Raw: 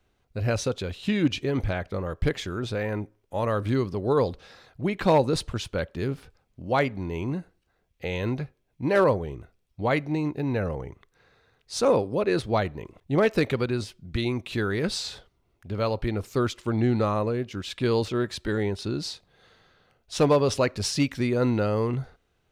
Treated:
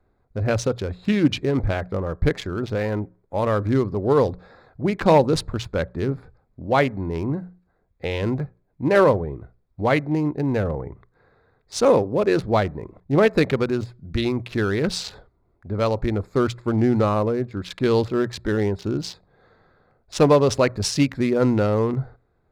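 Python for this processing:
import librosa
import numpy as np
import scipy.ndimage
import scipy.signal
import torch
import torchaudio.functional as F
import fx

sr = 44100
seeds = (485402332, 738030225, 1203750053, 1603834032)

y = fx.wiener(x, sr, points=15)
y = fx.hum_notches(y, sr, base_hz=60, count=3)
y = y * librosa.db_to_amplitude(5.0)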